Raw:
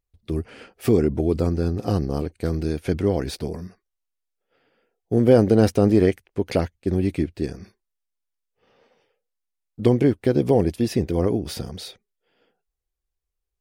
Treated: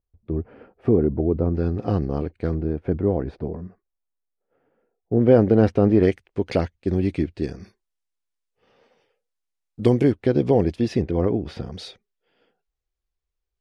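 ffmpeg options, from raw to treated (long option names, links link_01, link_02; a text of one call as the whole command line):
ffmpeg -i in.wav -af "asetnsamples=nb_out_samples=441:pad=0,asendcmd='1.55 lowpass f 2600;2.54 lowpass f 1100;5.21 lowpass f 2400;6.03 lowpass f 5300;7.6 lowpass f 10000;10.12 lowpass f 4500;11.02 lowpass f 2600;11.72 lowpass f 5800',lowpass=1000" out.wav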